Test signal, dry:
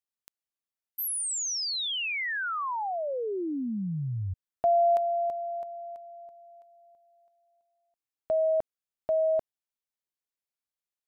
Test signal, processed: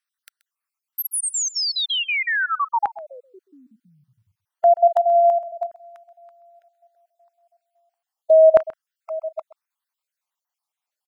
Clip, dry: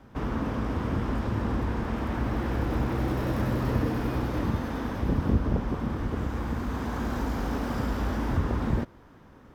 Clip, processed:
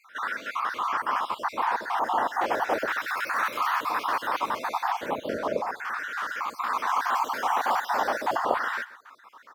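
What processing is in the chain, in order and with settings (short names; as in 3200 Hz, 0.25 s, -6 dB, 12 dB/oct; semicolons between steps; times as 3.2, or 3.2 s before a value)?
random spectral dropouts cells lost 44%; LFO high-pass saw down 0.35 Hz 650–1500 Hz; echo 0.13 s -18.5 dB; gain +8.5 dB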